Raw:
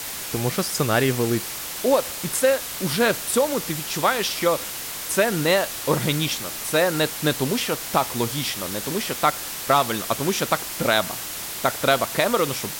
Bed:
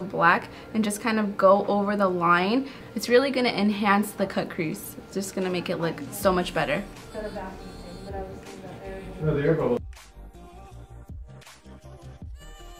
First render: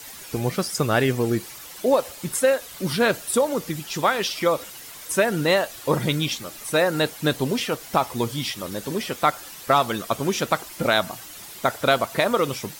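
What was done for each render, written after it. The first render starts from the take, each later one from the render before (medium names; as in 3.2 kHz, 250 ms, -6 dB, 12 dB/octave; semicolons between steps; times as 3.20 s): noise reduction 11 dB, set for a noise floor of -32 dBFS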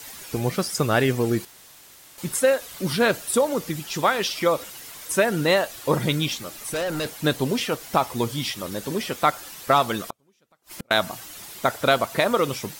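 1.45–2.18 s: room tone; 6.30–7.24 s: hard clipper -24 dBFS; 10.08–10.91 s: inverted gate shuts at -21 dBFS, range -40 dB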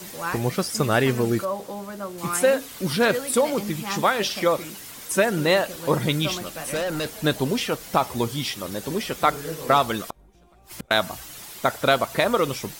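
add bed -10.5 dB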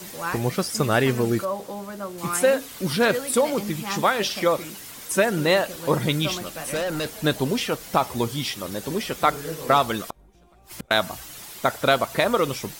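no audible change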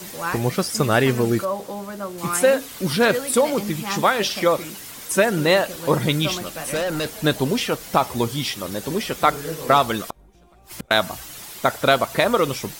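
trim +2.5 dB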